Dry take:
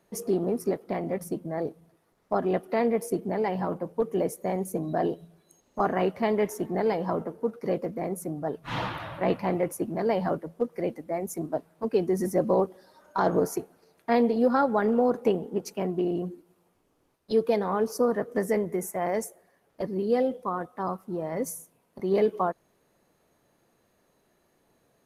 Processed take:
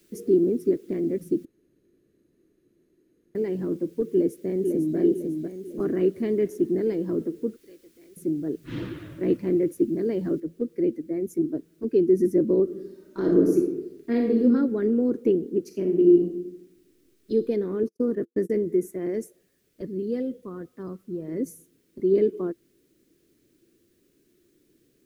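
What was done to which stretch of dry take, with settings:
1.45–3.35 s: room tone
4.08–4.97 s: echo throw 500 ms, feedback 45%, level -4.5 dB
7.56–8.17 s: differentiator
10.40 s: noise floor step -56 dB -64 dB
12.63–14.43 s: reverb throw, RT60 0.91 s, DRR 0.5 dB
15.65–17.32 s: reverb throw, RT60 0.93 s, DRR 4 dB
17.83–18.50 s: gate -33 dBFS, range -46 dB
19.25–21.28 s: peaking EQ 330 Hz -9 dB 0.68 oct
whole clip: FFT filter 200 Hz 0 dB, 340 Hz +11 dB, 800 Hz -24 dB, 1.6 kHz -9 dB

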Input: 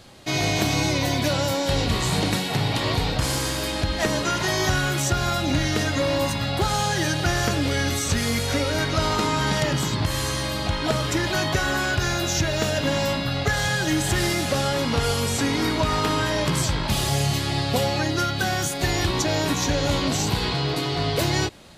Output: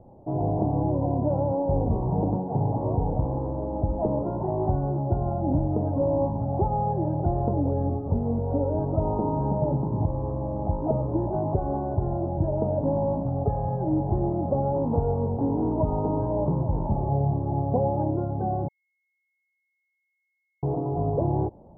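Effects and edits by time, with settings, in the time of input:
18.68–20.63 s: bleep 2.17 kHz -20.5 dBFS
whole clip: Chebyshev low-pass 900 Hz, order 5

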